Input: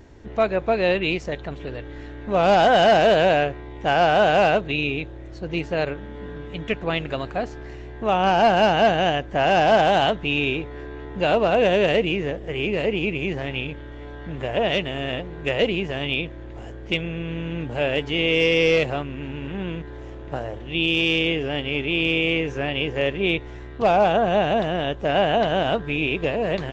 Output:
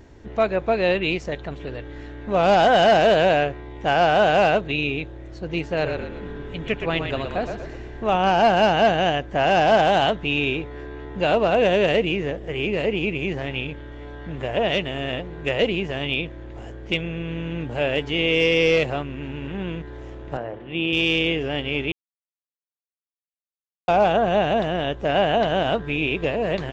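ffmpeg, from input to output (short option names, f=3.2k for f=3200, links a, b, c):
-filter_complex "[0:a]asettb=1/sr,asplit=3[a][b][c];[a]atrim=end=5.654[d];[b]atrim=start=5.65:end=8.16,asetpts=PTS-STARTPTS,afade=t=in:d=0.004:c=qsin,afade=t=out:st=2.506:d=0.004:c=qsin,asplit=6[e][f][g][h][i][j];[f]adelay=119,afreqshift=-38,volume=-6.5dB[k];[g]adelay=238,afreqshift=-76,volume=-13.8dB[l];[h]adelay=357,afreqshift=-114,volume=-21.2dB[m];[i]adelay=476,afreqshift=-152,volume=-28.5dB[n];[j]adelay=595,afreqshift=-190,volume=-35.8dB[o];[e][k][l][m][n][o]amix=inputs=6:normalize=0,atrim=end_sample=110691[p];[c]atrim=start=8.156[q];[d][p]acrossfade=d=0.004:c1=hsin:c2=qsin[r];[r][q]acrossfade=d=0.004:c1=qsin:c2=hsin,asettb=1/sr,asplit=3[s][t][u];[s]atrim=end=20.374[v];[t]atrim=start=20.37:end=20.93,asetpts=PTS-STARTPTS,afade=t=in:d=0.004:c=qsin,afade=t=out:st=0.556:d=0.004:c=qsin,highpass=130,lowpass=2.5k[w];[u]atrim=start=20.926[x];[v][w]acrossfade=d=0.004:c1=hsin:c2=qsin[y];[y][x]acrossfade=d=0.004:c1=qsin:c2=hsin,asplit=3[z][aa][ab];[z]atrim=end=21.92,asetpts=PTS-STARTPTS,afade=t=out:st=21.916:d=0.004:c=hsin[ac];[aa]atrim=start=21.92:end=23.88,asetpts=PTS-STARTPTS,volume=0[ad];[ab]atrim=start=23.88,asetpts=PTS-STARTPTS,afade=t=in:d=0.004:c=hsin[ae];[ac][ad][ae]concat=n=3:v=0:a=1"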